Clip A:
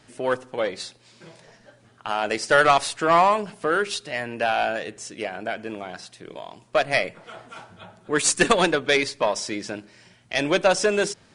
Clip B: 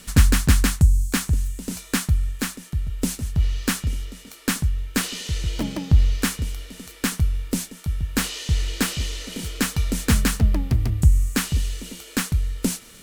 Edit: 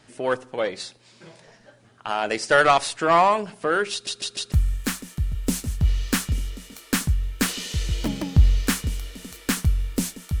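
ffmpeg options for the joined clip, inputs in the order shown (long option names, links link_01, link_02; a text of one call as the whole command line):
ffmpeg -i cue0.wav -i cue1.wav -filter_complex "[0:a]apad=whole_dur=10.4,atrim=end=10.4,asplit=4[link_01][link_02][link_03][link_04];[link_01]atrim=end=4.072[link_05];[link_02]atrim=start=3.918:end=4.072[link_06];[link_03]atrim=start=3.918:end=4.072[link_07];[link_04]atrim=start=3.918:end=4.072[link_08];[1:a]atrim=start=2.068:end=7.95[link_09];[link_05][link_06]acrossfade=duration=0.004:curve1=hsin:curve2=hsin[link_10];[link_10][link_07]acrossfade=duration=0.004:curve1=hsin:curve2=hsin[link_11];[link_11][link_08]acrossfade=duration=0.004:curve1=hsin:curve2=hsin[link_12];[link_12][link_09]acrossfade=duration=0.004:curve1=hsin:curve2=hsin" out.wav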